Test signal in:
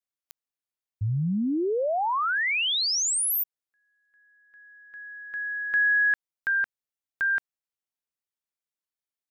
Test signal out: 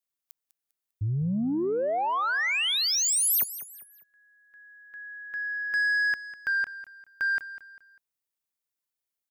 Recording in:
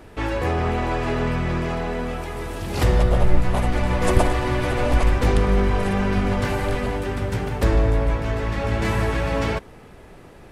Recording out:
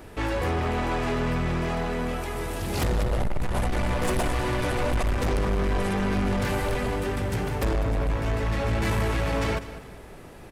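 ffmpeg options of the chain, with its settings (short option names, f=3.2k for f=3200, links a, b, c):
-filter_complex "[0:a]highshelf=f=8.6k:g=7.5,asoftclip=type=tanh:threshold=-21dB,asplit=2[a][b];[b]aecho=0:1:199|398|597:0.188|0.0697|0.0258[c];[a][c]amix=inputs=2:normalize=0"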